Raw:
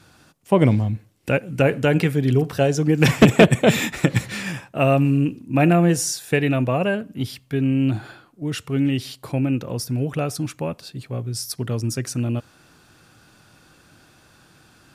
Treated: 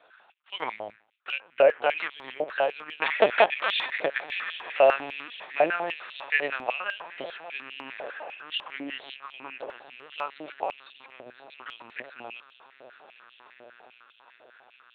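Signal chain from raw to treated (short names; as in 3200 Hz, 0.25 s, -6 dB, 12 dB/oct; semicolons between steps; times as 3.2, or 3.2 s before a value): gate with hold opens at -47 dBFS; diffused feedback echo 1.522 s, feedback 43%, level -13.5 dB; LPC vocoder at 8 kHz pitch kept; stepped high-pass 10 Hz 610–3100 Hz; gain -5.5 dB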